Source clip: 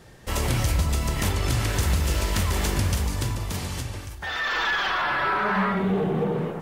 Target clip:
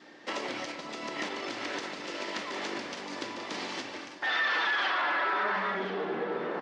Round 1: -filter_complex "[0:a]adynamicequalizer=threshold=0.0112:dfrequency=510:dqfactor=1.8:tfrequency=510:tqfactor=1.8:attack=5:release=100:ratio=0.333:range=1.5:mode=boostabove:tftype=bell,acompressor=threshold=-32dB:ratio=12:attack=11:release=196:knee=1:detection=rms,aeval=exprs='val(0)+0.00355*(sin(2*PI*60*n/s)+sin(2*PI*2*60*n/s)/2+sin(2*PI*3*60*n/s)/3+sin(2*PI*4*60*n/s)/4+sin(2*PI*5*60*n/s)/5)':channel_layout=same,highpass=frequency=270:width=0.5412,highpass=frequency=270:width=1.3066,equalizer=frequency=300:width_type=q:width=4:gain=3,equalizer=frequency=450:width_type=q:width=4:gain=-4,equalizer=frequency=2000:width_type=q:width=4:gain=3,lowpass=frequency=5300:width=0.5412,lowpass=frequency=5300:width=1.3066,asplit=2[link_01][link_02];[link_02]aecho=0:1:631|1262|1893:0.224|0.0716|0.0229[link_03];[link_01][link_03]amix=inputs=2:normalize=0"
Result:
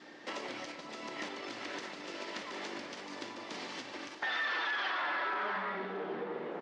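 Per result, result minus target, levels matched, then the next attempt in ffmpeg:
echo 405 ms early; downward compressor: peak gain reduction +6 dB
-filter_complex "[0:a]adynamicequalizer=threshold=0.0112:dfrequency=510:dqfactor=1.8:tfrequency=510:tqfactor=1.8:attack=5:release=100:ratio=0.333:range=1.5:mode=boostabove:tftype=bell,acompressor=threshold=-32dB:ratio=12:attack=11:release=196:knee=1:detection=rms,aeval=exprs='val(0)+0.00355*(sin(2*PI*60*n/s)+sin(2*PI*2*60*n/s)/2+sin(2*PI*3*60*n/s)/3+sin(2*PI*4*60*n/s)/4+sin(2*PI*5*60*n/s)/5)':channel_layout=same,highpass=frequency=270:width=0.5412,highpass=frequency=270:width=1.3066,equalizer=frequency=300:width_type=q:width=4:gain=3,equalizer=frequency=450:width_type=q:width=4:gain=-4,equalizer=frequency=2000:width_type=q:width=4:gain=3,lowpass=frequency=5300:width=0.5412,lowpass=frequency=5300:width=1.3066,asplit=2[link_01][link_02];[link_02]aecho=0:1:1036|2072|3108:0.224|0.0716|0.0229[link_03];[link_01][link_03]amix=inputs=2:normalize=0"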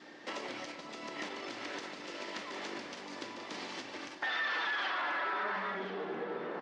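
downward compressor: peak gain reduction +6 dB
-filter_complex "[0:a]adynamicequalizer=threshold=0.0112:dfrequency=510:dqfactor=1.8:tfrequency=510:tqfactor=1.8:attack=5:release=100:ratio=0.333:range=1.5:mode=boostabove:tftype=bell,acompressor=threshold=-25.5dB:ratio=12:attack=11:release=196:knee=1:detection=rms,aeval=exprs='val(0)+0.00355*(sin(2*PI*60*n/s)+sin(2*PI*2*60*n/s)/2+sin(2*PI*3*60*n/s)/3+sin(2*PI*4*60*n/s)/4+sin(2*PI*5*60*n/s)/5)':channel_layout=same,highpass=frequency=270:width=0.5412,highpass=frequency=270:width=1.3066,equalizer=frequency=300:width_type=q:width=4:gain=3,equalizer=frequency=450:width_type=q:width=4:gain=-4,equalizer=frequency=2000:width_type=q:width=4:gain=3,lowpass=frequency=5300:width=0.5412,lowpass=frequency=5300:width=1.3066,asplit=2[link_01][link_02];[link_02]aecho=0:1:1036|2072|3108:0.224|0.0716|0.0229[link_03];[link_01][link_03]amix=inputs=2:normalize=0"

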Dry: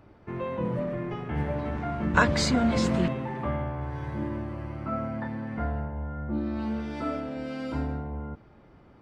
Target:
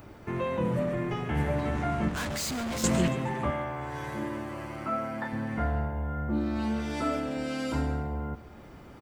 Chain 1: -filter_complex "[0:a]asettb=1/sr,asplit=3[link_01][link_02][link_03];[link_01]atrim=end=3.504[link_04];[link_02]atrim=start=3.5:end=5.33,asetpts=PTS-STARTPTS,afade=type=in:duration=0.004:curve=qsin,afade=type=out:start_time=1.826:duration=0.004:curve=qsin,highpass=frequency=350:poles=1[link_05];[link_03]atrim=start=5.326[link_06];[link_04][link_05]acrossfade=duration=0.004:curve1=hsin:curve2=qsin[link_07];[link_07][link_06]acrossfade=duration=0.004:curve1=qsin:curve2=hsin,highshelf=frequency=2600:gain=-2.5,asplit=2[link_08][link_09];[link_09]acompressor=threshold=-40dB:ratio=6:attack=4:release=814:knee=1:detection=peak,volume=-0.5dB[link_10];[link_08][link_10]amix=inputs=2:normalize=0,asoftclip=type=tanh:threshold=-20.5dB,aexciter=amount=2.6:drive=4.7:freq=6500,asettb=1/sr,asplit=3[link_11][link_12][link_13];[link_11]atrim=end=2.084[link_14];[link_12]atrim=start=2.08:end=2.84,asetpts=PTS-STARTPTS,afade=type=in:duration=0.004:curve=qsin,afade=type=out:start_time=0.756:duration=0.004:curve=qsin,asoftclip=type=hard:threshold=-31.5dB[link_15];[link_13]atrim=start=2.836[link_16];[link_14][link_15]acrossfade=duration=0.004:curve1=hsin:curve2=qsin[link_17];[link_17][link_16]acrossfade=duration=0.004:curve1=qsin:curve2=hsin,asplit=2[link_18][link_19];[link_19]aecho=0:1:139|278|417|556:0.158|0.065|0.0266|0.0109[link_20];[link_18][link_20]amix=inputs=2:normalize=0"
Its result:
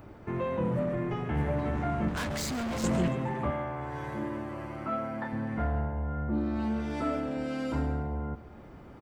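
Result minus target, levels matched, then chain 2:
4,000 Hz band −3.0 dB; soft clipping: distortion +4 dB
-filter_complex "[0:a]asettb=1/sr,asplit=3[link_01][link_02][link_03];[link_01]atrim=end=3.504[link_04];[link_02]atrim=start=3.5:end=5.33,asetpts=PTS-STARTPTS,afade=type=in:duration=0.004:curve=qsin,afade=type=out:start_time=1.826:duration=0.004:curve=qsin,highpass=frequency=350:poles=1[link_05];[link_03]atrim=start=5.326[link_06];[link_04][link_05]acrossfade=duration=0.004:curve1=hsin:curve2=qsin[link_07];[link_07][link_06]acrossfade=duration=0.004:curve1=qsin:curve2=hsin,highshelf=frequency=2600:gain=7.5,asplit=2[link_08][link_09];[link_09]acompressor=threshold=-40dB:ratio=6:attack=4:release=814:knee=1:detection=peak,volume=-0.5dB[link_10];[link_08][link_10]amix=inputs=2:normalize=0,asoftclip=type=tanh:threshold=-14.5dB,aexciter=amount=2.6:drive=4.7:freq=6500,asettb=1/sr,asplit=3[link_11][link_12][link_13];[link_11]atrim=end=2.084[link_14];[link_12]atrim=start=2.08:end=2.84,asetpts=PTS-STARTPTS,afade=type=in:duration=0.004:curve=qsin,afade=type=out:start_time=0.756:duration=0.004:curve=qsin,asoftclip=type=hard:threshold=-31.5dB[link_15];[link_13]atrim=start=2.836[link_16];[link_14][link_15]acrossfade=duration=0.004:curve1=hsin:curve2=qsin[link_17];[link_17][link_16]acrossfade=duration=0.004:curve1=qsin:curve2=hsin,asplit=2[link_18][link_19];[link_19]aecho=0:1:139|278|417|556:0.158|0.065|0.0266|0.0109[link_20];[link_18][link_20]amix=inputs=2:normalize=0"

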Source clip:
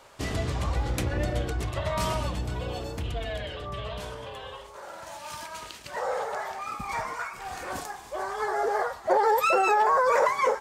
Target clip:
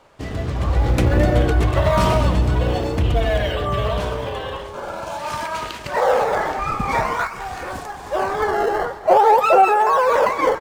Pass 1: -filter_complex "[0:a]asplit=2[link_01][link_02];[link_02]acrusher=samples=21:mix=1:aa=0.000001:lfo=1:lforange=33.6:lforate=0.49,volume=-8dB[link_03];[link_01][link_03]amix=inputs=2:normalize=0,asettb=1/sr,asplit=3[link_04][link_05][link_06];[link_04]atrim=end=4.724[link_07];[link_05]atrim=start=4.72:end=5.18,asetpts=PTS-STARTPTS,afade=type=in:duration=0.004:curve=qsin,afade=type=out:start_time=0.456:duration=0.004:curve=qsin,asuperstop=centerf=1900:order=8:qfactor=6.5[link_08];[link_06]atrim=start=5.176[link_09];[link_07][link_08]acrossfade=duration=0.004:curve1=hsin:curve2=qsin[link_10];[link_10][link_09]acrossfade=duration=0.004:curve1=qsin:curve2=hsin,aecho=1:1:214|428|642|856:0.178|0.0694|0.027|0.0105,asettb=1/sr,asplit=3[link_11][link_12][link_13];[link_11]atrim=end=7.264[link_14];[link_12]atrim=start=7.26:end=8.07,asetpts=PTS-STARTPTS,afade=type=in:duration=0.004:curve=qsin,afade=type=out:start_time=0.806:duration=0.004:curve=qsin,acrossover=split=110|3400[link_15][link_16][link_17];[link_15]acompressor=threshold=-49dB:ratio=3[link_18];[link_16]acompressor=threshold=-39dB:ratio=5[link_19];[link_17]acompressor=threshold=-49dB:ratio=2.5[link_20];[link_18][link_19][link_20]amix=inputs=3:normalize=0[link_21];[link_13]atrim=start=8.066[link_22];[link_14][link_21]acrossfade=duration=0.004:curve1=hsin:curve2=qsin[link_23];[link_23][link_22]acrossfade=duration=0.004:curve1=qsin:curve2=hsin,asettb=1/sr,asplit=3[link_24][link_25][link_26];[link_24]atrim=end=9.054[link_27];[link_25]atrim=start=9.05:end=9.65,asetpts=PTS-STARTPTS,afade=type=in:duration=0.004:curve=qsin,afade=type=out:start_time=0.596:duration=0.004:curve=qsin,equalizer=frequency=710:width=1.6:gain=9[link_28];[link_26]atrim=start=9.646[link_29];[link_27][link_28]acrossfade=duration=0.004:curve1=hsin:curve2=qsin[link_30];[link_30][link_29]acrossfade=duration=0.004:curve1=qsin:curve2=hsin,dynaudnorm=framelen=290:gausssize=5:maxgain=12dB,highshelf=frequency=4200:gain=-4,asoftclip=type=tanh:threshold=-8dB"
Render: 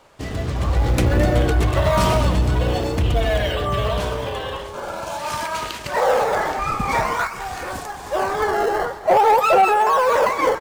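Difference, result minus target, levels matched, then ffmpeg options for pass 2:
soft clipping: distortion +9 dB; 8,000 Hz band +5.0 dB
-filter_complex "[0:a]asplit=2[link_01][link_02];[link_02]acrusher=samples=21:mix=1:aa=0.000001:lfo=1:lforange=33.6:lforate=0.49,volume=-8dB[link_03];[link_01][link_03]amix=inputs=2:normalize=0,asettb=1/sr,asplit=3[link_04][link_05][link_06];[link_04]atrim=end=4.724[link_07];[link_05]atrim=start=4.72:end=5.18,asetpts=PTS-STARTPTS,afade=type=in:duration=0.004:curve=qsin,afade=type=out:start_time=0.456:duration=0.004:curve=qsin,asuperstop=centerf=1900:order=8:qfactor=6.5[link_08];[link_06]atrim=start=5.176[link_09];[link_07][link_08]acrossfade=duration=0.004:curve1=hsin:curve2=qsin[link_10];[link_10][link_09]acrossfade=duration=0.004:curve1=qsin:curve2=hsin,aecho=1:1:214|428|642|856:0.178|0.0694|0.027|0.0105,asettb=1/sr,asplit=3[link_11][link_12][link_13];[link_11]atrim=end=7.264[link_14];[link_12]atrim=start=7.26:end=8.07,asetpts=PTS-STARTPTS,afade=type=in:duration=0.004:curve=qsin,afade=type=out:start_time=0.806:duration=0.004:curve=qsin,acrossover=split=110|3400[link_15][link_16][link_17];[link_15]acompressor=threshold=-49dB:ratio=3[link_18];[link_16]acompressor=threshold=-39dB:ratio=5[link_19];[link_17]acompressor=threshold=-49dB:ratio=2.5[link_20];[link_18][link_19][link_20]amix=inputs=3:normalize=0[link_21];[link_13]atrim=start=8.066[link_22];[link_14][link_21]acrossfade=duration=0.004:curve1=hsin:curve2=qsin[link_23];[link_23][link_22]acrossfade=duration=0.004:curve1=qsin:curve2=hsin,asettb=1/sr,asplit=3[link_24][link_25][link_26];[link_24]atrim=end=9.054[link_27];[link_25]atrim=start=9.05:end=9.65,asetpts=PTS-STARTPTS,afade=type=in:duration=0.004:curve=qsin,afade=type=out:start_time=0.596:duration=0.004:curve=qsin,equalizer=frequency=710:width=1.6:gain=9[link_28];[link_26]atrim=start=9.646[link_29];[link_27][link_28]acrossfade=duration=0.004:curve1=hsin:curve2=qsin[link_30];[link_30][link_29]acrossfade=duration=0.004:curve1=qsin:curve2=hsin,dynaudnorm=framelen=290:gausssize=5:maxgain=12dB,highshelf=frequency=4200:gain=-10,asoftclip=type=tanh:threshold=-2dB"

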